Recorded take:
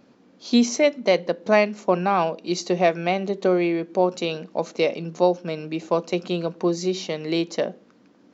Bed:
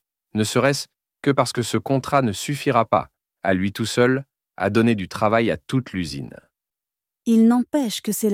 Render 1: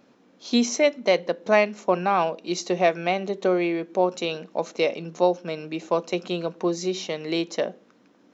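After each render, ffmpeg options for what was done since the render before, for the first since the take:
ffmpeg -i in.wav -af "lowshelf=frequency=270:gain=-6.5,bandreject=frequency=4600:width=13" out.wav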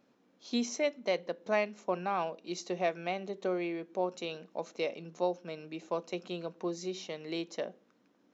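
ffmpeg -i in.wav -af "volume=-11dB" out.wav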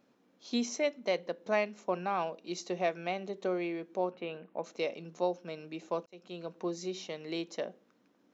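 ffmpeg -i in.wav -filter_complex "[0:a]asettb=1/sr,asplit=3[link_01][link_02][link_03];[link_01]atrim=end=4.114[link_04];[link_02]atrim=start=4.11:end=4.64,asetpts=PTS-STARTPTS,afade=type=in:duration=0.004:curve=qsin,afade=type=out:start_time=0.526:duration=0.004:curve=qsin,lowpass=frequency=2700:width=0.5412,lowpass=frequency=2700:width=1.3066[link_05];[link_03]atrim=start=4.636[link_06];[link_04][link_05]acrossfade=duration=0.004:curve1=hsin:curve2=qsin[link_07];[link_07][link_06]acrossfade=duration=0.004:curve1=qsin:curve2=hsin,asplit=2[link_08][link_09];[link_08]atrim=end=6.06,asetpts=PTS-STARTPTS,afade=type=out:start_time=6.056:duration=0.004:curve=hsin[link_10];[link_09]atrim=start=6.06,asetpts=PTS-STARTPTS,afade=type=in:duration=0.49[link_11];[link_10][link_11]concat=n=2:v=0:a=1" out.wav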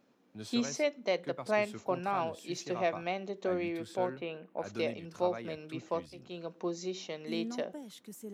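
ffmpeg -i in.wav -i bed.wav -filter_complex "[1:a]volume=-24.5dB[link_01];[0:a][link_01]amix=inputs=2:normalize=0" out.wav

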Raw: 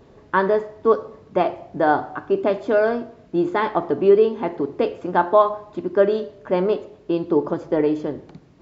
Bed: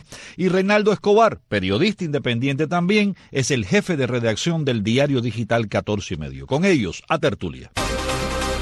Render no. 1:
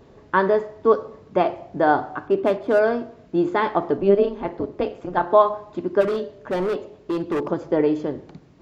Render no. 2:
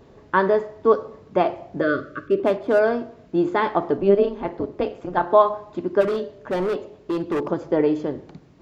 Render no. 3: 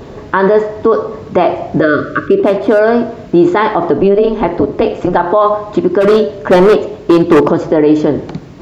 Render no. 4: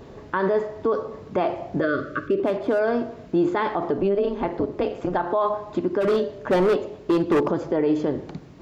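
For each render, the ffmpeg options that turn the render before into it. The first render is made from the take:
ffmpeg -i in.wav -filter_complex "[0:a]asplit=3[link_01][link_02][link_03];[link_01]afade=type=out:start_time=2.27:duration=0.02[link_04];[link_02]adynamicsmooth=sensitivity=7.5:basefreq=2500,afade=type=in:start_time=2.27:duration=0.02,afade=type=out:start_time=2.78:duration=0.02[link_05];[link_03]afade=type=in:start_time=2.78:duration=0.02[link_06];[link_04][link_05][link_06]amix=inputs=3:normalize=0,asettb=1/sr,asplit=3[link_07][link_08][link_09];[link_07]atrim=end=3.974[link_10];[link_08]atrim=start=3.97:end=5.3,asetpts=PTS-STARTPTS,afade=type=in:duration=0.004:curve=qsin,afade=type=out:start_time=1.326:duration=0.004:curve=qsin,tremolo=f=200:d=0.71[link_11];[link_09]atrim=start=5.296[link_12];[link_10][link_11]acrossfade=duration=0.004:curve1=hsin:curve2=qsin[link_13];[link_13][link_12]acrossfade=duration=0.004:curve1=qsin:curve2=hsin,asplit=3[link_14][link_15][link_16];[link_14]afade=type=out:start_time=6:duration=0.02[link_17];[link_15]volume=20dB,asoftclip=hard,volume=-20dB,afade=type=in:start_time=6:duration=0.02,afade=type=out:start_time=7.48:duration=0.02[link_18];[link_16]afade=type=in:start_time=7.48:duration=0.02[link_19];[link_17][link_18][link_19]amix=inputs=3:normalize=0" out.wav
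ffmpeg -i in.wav -filter_complex "[0:a]asettb=1/sr,asplit=3[link_01][link_02][link_03];[link_01]atrim=end=1.814[link_04];[link_02]atrim=start=1.81:end=2.4,asetpts=PTS-STARTPTS,afade=type=in:duration=0.004:curve=qsin,afade=type=out:start_time=0.586:duration=0.004:curve=qsin,asuperstop=centerf=840:order=20:qfactor=1.7[link_05];[link_03]atrim=start=2.396[link_06];[link_04][link_05]acrossfade=duration=0.004:curve1=hsin:curve2=qsin[link_07];[link_07][link_06]acrossfade=duration=0.004:curve1=qsin:curve2=hsin" out.wav
ffmpeg -i in.wav -filter_complex "[0:a]asplit=2[link_01][link_02];[link_02]acompressor=threshold=-27dB:ratio=6,volume=0.5dB[link_03];[link_01][link_03]amix=inputs=2:normalize=0,alimiter=level_in=13dB:limit=-1dB:release=50:level=0:latency=1" out.wav
ffmpeg -i in.wav -af "volume=-12.5dB" out.wav

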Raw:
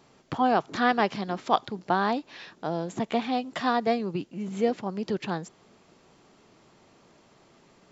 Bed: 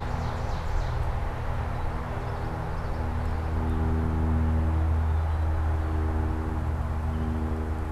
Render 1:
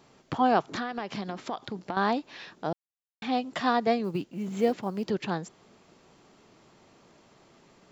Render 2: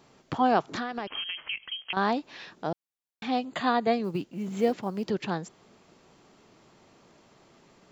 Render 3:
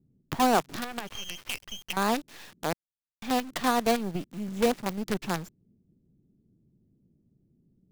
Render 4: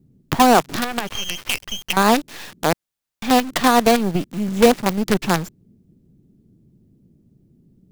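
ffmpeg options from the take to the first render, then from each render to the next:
ffmpeg -i in.wav -filter_complex "[0:a]asettb=1/sr,asplit=3[link_01][link_02][link_03];[link_01]atrim=end=0.704[link_04];[link_02]atrim=start=0.7:end=1.97,asetpts=PTS-STARTPTS,afade=type=in:duration=0.004:curve=qsin,afade=type=out:start_time=1.266:duration=0.004:curve=qsin,acompressor=threshold=-28dB:ratio=10:attack=3.2:release=140:knee=1:detection=peak[link_05];[link_03]atrim=start=1.966[link_06];[link_04][link_05]acrossfade=duration=0.004:curve1=hsin:curve2=qsin[link_07];[link_07][link_06]acrossfade=duration=0.004:curve1=qsin:curve2=hsin,asplit=3[link_08][link_09][link_10];[link_08]afade=type=out:start_time=4.03:duration=0.02[link_11];[link_09]acrusher=bits=9:mode=log:mix=0:aa=0.000001,afade=type=in:start_time=4.03:duration=0.02,afade=type=out:start_time=5.09:duration=0.02[link_12];[link_10]afade=type=in:start_time=5.09:duration=0.02[link_13];[link_11][link_12][link_13]amix=inputs=3:normalize=0,asplit=3[link_14][link_15][link_16];[link_14]atrim=end=2.73,asetpts=PTS-STARTPTS,afade=type=out:start_time=2.726:duration=0.004:curve=hsin[link_17];[link_15]atrim=start=2.73:end=3.22,asetpts=PTS-STARTPTS,volume=0[link_18];[link_16]atrim=start=3.22,asetpts=PTS-STARTPTS,afade=type=in:duration=0.004:curve=hsin[link_19];[link_17][link_18][link_19]concat=n=3:v=0:a=1" out.wav
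ffmpeg -i in.wav -filter_complex "[0:a]asettb=1/sr,asplit=3[link_01][link_02][link_03];[link_01]atrim=end=1.074[link_04];[link_02]atrim=start=1.07:end=1.93,asetpts=PTS-STARTPTS,afade=type=in:duration=0.004:curve=qsin,afade=type=out:start_time=0.856:duration=0.004:curve=qsin,lowpass=frequency=2900:width_type=q:width=0.5098,lowpass=frequency=2900:width_type=q:width=0.6013,lowpass=frequency=2900:width_type=q:width=0.9,lowpass=frequency=2900:width_type=q:width=2.563,afreqshift=-3400[link_05];[link_03]atrim=start=1.926[link_06];[link_04][link_05]acrossfade=duration=0.004:curve1=hsin:curve2=qsin[link_07];[link_07][link_06]acrossfade=duration=0.004:curve1=qsin:curve2=hsin,asettb=1/sr,asplit=3[link_08][link_09][link_10];[link_08]atrim=end=3.454[link_11];[link_09]atrim=start=3.45:end=3.94,asetpts=PTS-STARTPTS,afade=type=in:duration=0.004:curve=qsin,afade=type=out:start_time=0.486:duration=0.004:curve=qsin,asuperstop=centerf=5500:order=8:qfactor=4[link_12];[link_10]atrim=start=3.936[link_13];[link_11][link_12]acrossfade=duration=0.004:curve1=hsin:curve2=qsin[link_14];[link_14][link_13]acrossfade=duration=0.004:curve1=qsin:curve2=hsin" out.wav
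ffmpeg -i in.wav -filter_complex "[0:a]acrossover=split=250[link_01][link_02];[link_01]crystalizer=i=9:c=0[link_03];[link_02]acrusher=bits=5:dc=4:mix=0:aa=0.000001[link_04];[link_03][link_04]amix=inputs=2:normalize=0" out.wav
ffmpeg -i in.wav -af "volume=11.5dB,alimiter=limit=-2dB:level=0:latency=1" out.wav

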